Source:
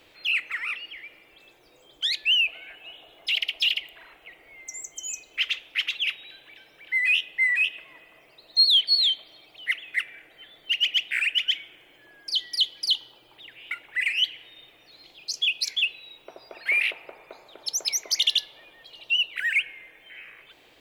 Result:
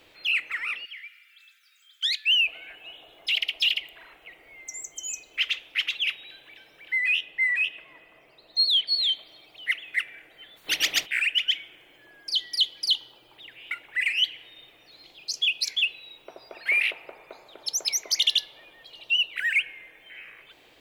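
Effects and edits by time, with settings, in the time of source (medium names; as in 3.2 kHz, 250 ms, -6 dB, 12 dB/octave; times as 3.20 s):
0.85–2.32 s: steep high-pass 1.3 kHz 96 dB/octave
6.95–9.09 s: treble shelf 3.5 kHz -6.5 dB
10.56–11.05 s: spectral peaks clipped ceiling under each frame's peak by 27 dB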